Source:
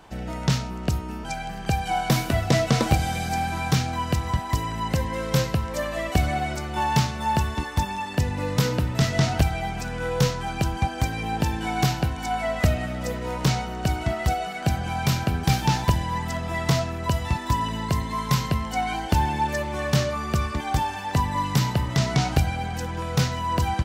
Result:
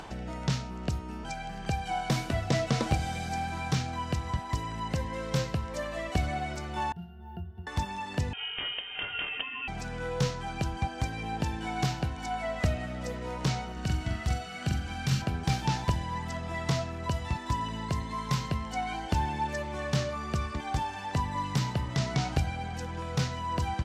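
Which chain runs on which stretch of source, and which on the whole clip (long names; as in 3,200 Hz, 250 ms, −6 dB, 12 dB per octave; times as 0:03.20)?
0:06.92–0:07.67: resonances in every octave F, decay 0.32 s + bad sample-rate conversion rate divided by 3×, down filtered, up hold
0:08.33–0:09.68: Chebyshev high-pass filter 240 Hz, order 4 + voice inversion scrambler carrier 3,400 Hz
0:13.72–0:15.22: parametric band 650 Hz −7 dB 1.8 octaves + double-tracking delay 45 ms −4 dB + flutter between parallel walls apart 7.6 metres, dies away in 0.29 s
whole clip: low-pass filter 8,800 Hz 12 dB per octave; upward compression, threshold −26 dBFS; level −7 dB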